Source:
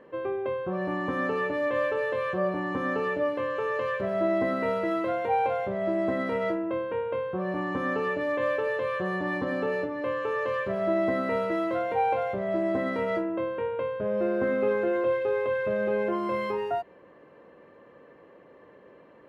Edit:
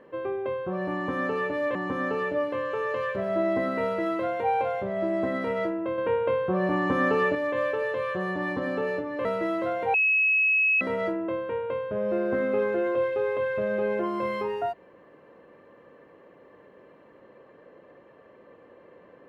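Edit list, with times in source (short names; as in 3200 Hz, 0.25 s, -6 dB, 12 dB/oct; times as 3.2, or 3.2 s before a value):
1.75–2.6 cut
6.83–8.2 gain +5 dB
10.1–11.34 cut
12.03–12.9 bleep 2570 Hz -19 dBFS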